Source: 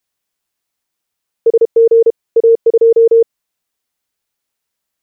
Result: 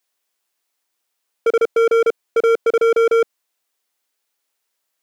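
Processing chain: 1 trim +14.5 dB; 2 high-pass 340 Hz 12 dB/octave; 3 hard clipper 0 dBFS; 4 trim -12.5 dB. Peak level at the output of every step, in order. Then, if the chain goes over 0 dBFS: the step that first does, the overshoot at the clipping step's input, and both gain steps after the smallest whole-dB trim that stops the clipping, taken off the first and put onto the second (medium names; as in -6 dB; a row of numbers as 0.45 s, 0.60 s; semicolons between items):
+10.5 dBFS, +9.5 dBFS, 0.0 dBFS, -12.5 dBFS; step 1, 9.5 dB; step 1 +4.5 dB, step 4 -2.5 dB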